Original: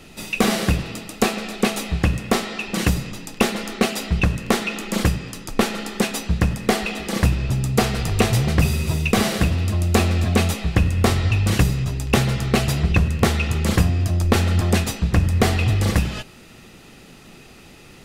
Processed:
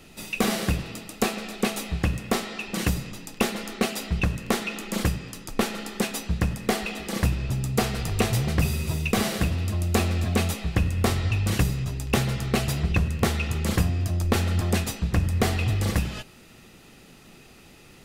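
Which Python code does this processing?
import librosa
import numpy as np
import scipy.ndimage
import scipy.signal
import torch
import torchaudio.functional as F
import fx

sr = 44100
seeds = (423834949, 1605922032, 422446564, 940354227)

y = fx.high_shelf(x, sr, hz=12000.0, db=6.0)
y = F.gain(torch.from_numpy(y), -5.5).numpy()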